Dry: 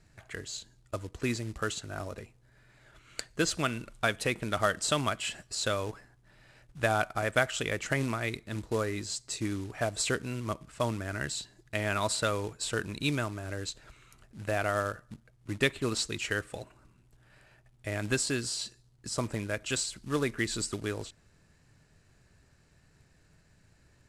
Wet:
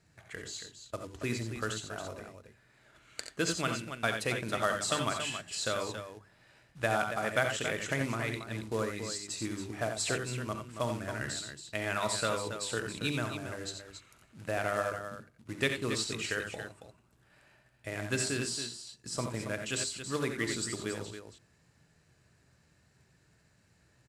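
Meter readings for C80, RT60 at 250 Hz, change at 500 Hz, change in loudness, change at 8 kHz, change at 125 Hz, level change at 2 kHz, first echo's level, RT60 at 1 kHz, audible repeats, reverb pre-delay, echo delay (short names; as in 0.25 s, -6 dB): none, none, -2.0 dB, -2.0 dB, -1.5 dB, -3.0 dB, -1.5 dB, -16.0 dB, none, 3, none, 41 ms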